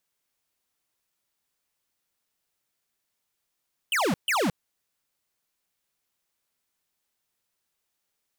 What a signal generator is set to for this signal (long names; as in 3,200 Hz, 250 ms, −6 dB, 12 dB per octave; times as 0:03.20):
repeated falling chirps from 3,200 Hz, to 150 Hz, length 0.22 s square, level −24 dB, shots 2, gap 0.14 s